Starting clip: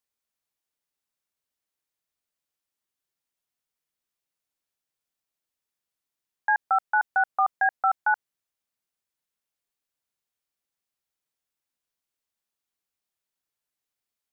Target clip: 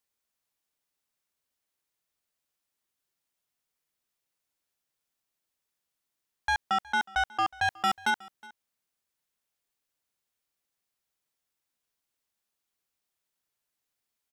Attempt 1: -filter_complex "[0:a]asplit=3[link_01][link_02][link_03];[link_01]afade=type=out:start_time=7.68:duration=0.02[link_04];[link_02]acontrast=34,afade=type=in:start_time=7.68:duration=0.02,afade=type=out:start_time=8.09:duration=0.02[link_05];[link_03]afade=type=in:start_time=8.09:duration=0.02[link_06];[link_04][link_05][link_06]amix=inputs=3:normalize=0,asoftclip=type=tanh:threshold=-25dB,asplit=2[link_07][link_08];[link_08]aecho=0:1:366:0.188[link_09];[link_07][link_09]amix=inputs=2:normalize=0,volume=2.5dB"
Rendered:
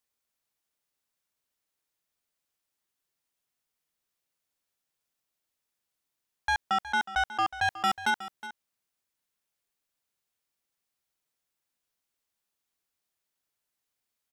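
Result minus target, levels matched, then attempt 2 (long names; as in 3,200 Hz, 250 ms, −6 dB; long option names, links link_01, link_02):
echo-to-direct +8 dB
-filter_complex "[0:a]asplit=3[link_01][link_02][link_03];[link_01]afade=type=out:start_time=7.68:duration=0.02[link_04];[link_02]acontrast=34,afade=type=in:start_time=7.68:duration=0.02,afade=type=out:start_time=8.09:duration=0.02[link_05];[link_03]afade=type=in:start_time=8.09:duration=0.02[link_06];[link_04][link_05][link_06]amix=inputs=3:normalize=0,asoftclip=type=tanh:threshold=-25dB,asplit=2[link_07][link_08];[link_08]aecho=0:1:366:0.075[link_09];[link_07][link_09]amix=inputs=2:normalize=0,volume=2.5dB"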